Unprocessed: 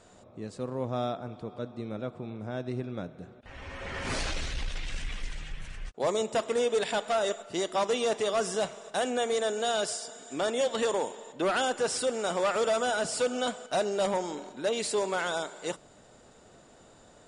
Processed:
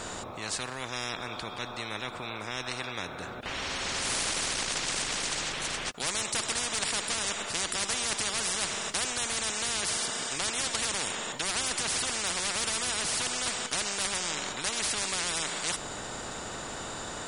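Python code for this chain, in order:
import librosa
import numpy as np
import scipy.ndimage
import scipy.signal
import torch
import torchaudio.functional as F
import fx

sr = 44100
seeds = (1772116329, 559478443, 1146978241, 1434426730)

y = fx.spectral_comp(x, sr, ratio=10.0)
y = F.gain(torch.from_numpy(y), 6.0).numpy()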